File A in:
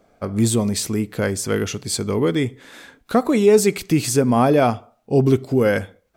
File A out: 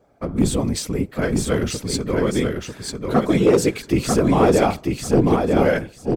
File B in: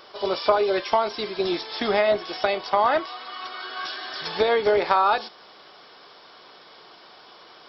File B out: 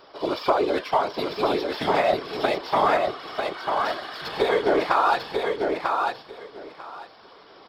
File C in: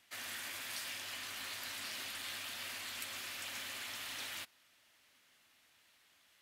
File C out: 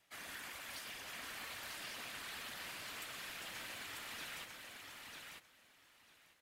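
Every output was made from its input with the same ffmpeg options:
-filter_complex "[0:a]asplit=2[s0][s1];[s1]adynamicsmooth=sensitivity=7:basefreq=1900,volume=0.794[s2];[s0][s2]amix=inputs=2:normalize=0,afftfilt=real='hypot(re,im)*cos(2*PI*random(0))':imag='hypot(re,im)*sin(2*PI*random(1))':win_size=512:overlap=0.75,asoftclip=type=hard:threshold=0.398,aecho=1:1:945|1890|2835:0.631|0.107|0.0182"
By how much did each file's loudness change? -0.5 LU, -0.5 LU, -4.5 LU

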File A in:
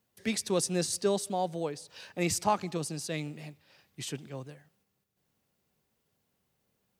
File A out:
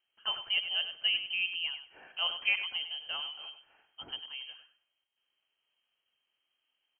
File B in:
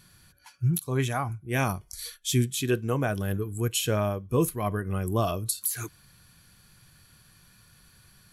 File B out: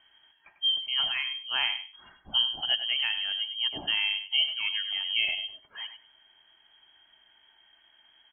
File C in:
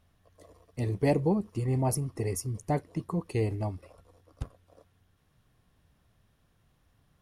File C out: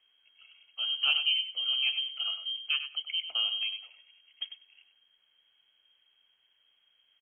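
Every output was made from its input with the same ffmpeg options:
-filter_complex "[0:a]asplit=2[s0][s1];[s1]aecho=0:1:98|196:0.316|0.0538[s2];[s0][s2]amix=inputs=2:normalize=0,lowpass=f=2800:t=q:w=0.5098,lowpass=f=2800:t=q:w=0.6013,lowpass=f=2800:t=q:w=0.9,lowpass=f=2800:t=q:w=2.563,afreqshift=-3300,volume=0.75"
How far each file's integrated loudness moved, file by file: 0.0 LU, +1.5 LU, +1.5 LU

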